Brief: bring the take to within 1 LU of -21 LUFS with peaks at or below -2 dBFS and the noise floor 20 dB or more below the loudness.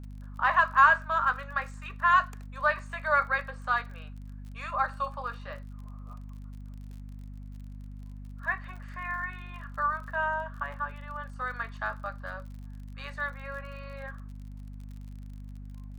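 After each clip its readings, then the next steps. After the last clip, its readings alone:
tick rate 43 per s; hum 50 Hz; highest harmonic 250 Hz; hum level -40 dBFS; loudness -29.0 LUFS; peak level -7.5 dBFS; loudness target -21.0 LUFS
-> de-click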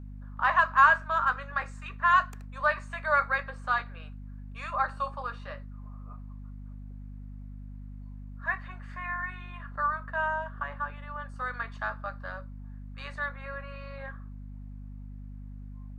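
tick rate 0.063 per s; hum 50 Hz; highest harmonic 250 Hz; hum level -40 dBFS
-> hum notches 50/100/150/200/250 Hz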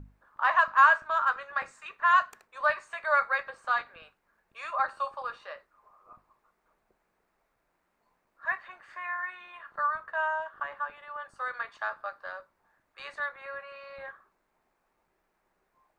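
hum not found; loudness -28.5 LUFS; peak level -7.5 dBFS; loudness target -21.0 LUFS
-> trim +7.5 dB; peak limiter -2 dBFS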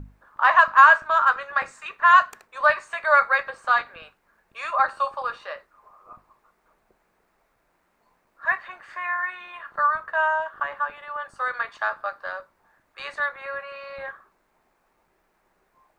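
loudness -21.5 LUFS; peak level -2.0 dBFS; noise floor -69 dBFS

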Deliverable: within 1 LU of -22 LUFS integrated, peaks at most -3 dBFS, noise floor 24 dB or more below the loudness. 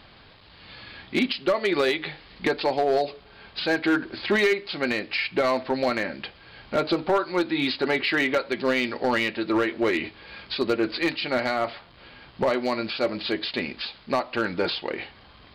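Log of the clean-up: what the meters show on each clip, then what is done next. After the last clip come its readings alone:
clipped samples 1.0%; clipping level -15.5 dBFS; loudness -25.5 LUFS; peak level -15.5 dBFS; loudness target -22.0 LUFS
-> clip repair -15.5 dBFS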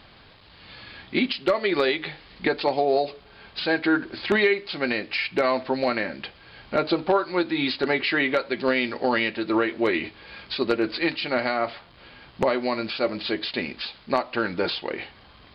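clipped samples 0.0%; loudness -25.0 LUFS; peak level -6.5 dBFS; loudness target -22.0 LUFS
-> trim +3 dB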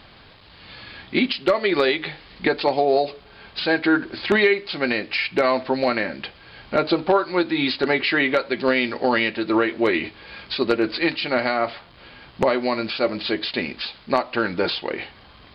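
loudness -22.0 LUFS; peak level -3.5 dBFS; noise floor -49 dBFS

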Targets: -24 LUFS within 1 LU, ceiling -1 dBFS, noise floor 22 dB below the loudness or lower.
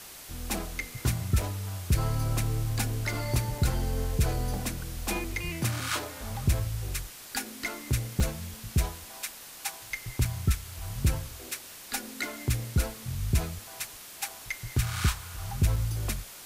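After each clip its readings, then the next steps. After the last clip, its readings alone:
dropouts 7; longest dropout 3.0 ms; noise floor -46 dBFS; noise floor target -54 dBFS; loudness -31.5 LUFS; peak level -14.5 dBFS; loudness target -24.0 LUFS
-> interpolate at 1.42/3.58/5.24/5.80/8.20/10.25/15.76 s, 3 ms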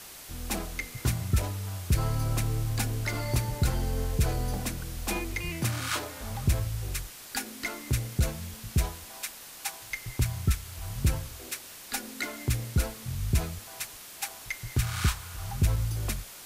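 dropouts 0; noise floor -46 dBFS; noise floor target -54 dBFS
-> noise print and reduce 8 dB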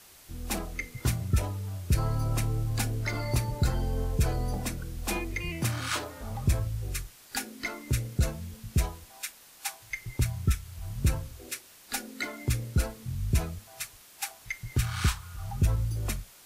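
noise floor -54 dBFS; loudness -32.0 LUFS; peak level -15.0 dBFS; loudness target -24.0 LUFS
-> trim +8 dB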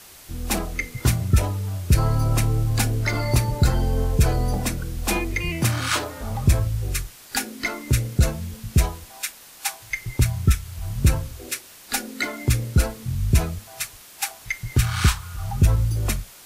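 loudness -24.0 LUFS; peak level -7.0 dBFS; noise floor -46 dBFS

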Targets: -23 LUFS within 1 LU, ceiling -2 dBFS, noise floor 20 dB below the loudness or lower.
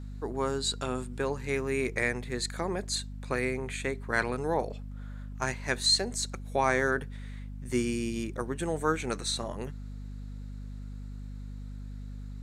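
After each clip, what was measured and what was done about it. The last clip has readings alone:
hum 50 Hz; highest harmonic 250 Hz; hum level -38 dBFS; loudness -30.5 LUFS; peak level -11.5 dBFS; loudness target -23.0 LUFS
-> hum notches 50/100/150/200/250 Hz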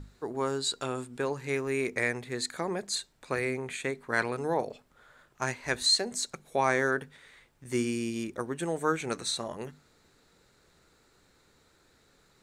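hum not found; loudness -31.0 LUFS; peak level -11.5 dBFS; loudness target -23.0 LUFS
-> trim +8 dB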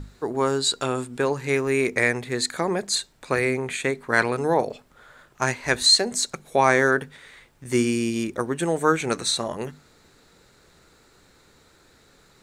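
loudness -23.0 LUFS; peak level -3.5 dBFS; noise floor -57 dBFS

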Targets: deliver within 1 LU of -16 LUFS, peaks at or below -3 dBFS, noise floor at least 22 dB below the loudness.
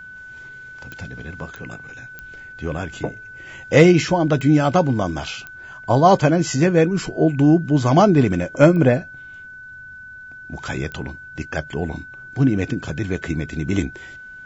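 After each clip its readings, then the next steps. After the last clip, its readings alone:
clicks found 7; steady tone 1.5 kHz; tone level -36 dBFS; loudness -18.5 LUFS; peak level -2.5 dBFS; loudness target -16.0 LUFS
-> de-click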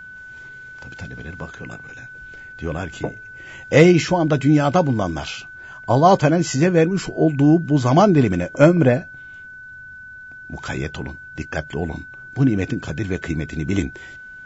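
clicks found 0; steady tone 1.5 kHz; tone level -36 dBFS
-> band-stop 1.5 kHz, Q 30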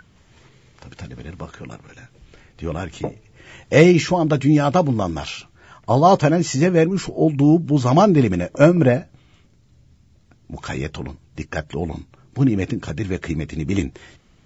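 steady tone not found; loudness -18.5 LUFS; peak level -2.0 dBFS; loudness target -16.0 LUFS
-> trim +2.5 dB; peak limiter -3 dBFS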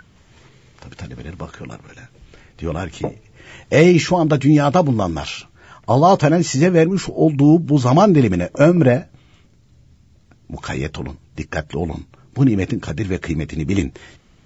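loudness -16.5 LUFS; peak level -3.0 dBFS; noise floor -52 dBFS

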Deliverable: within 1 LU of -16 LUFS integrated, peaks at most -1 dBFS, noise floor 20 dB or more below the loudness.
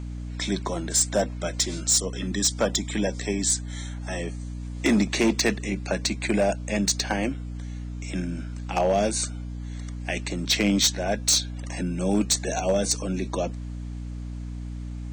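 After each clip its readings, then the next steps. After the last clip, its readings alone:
clipped samples 0.5%; clipping level -15.0 dBFS; hum 60 Hz; highest harmonic 300 Hz; hum level -31 dBFS; loudness -25.0 LUFS; peak level -15.0 dBFS; loudness target -16.0 LUFS
-> clip repair -15 dBFS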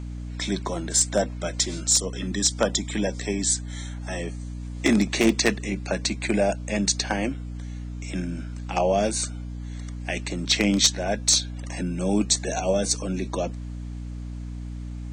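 clipped samples 0.0%; hum 60 Hz; highest harmonic 300 Hz; hum level -31 dBFS
-> hum notches 60/120/180/240/300 Hz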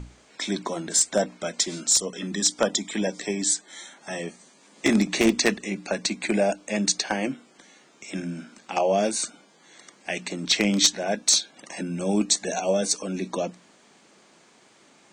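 hum not found; loudness -24.5 LUFS; peak level -5.5 dBFS; loudness target -16.0 LUFS
-> trim +8.5 dB; peak limiter -1 dBFS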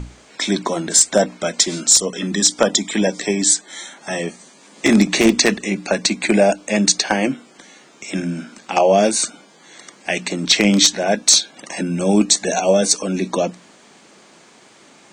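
loudness -16.5 LUFS; peak level -1.0 dBFS; noise floor -49 dBFS

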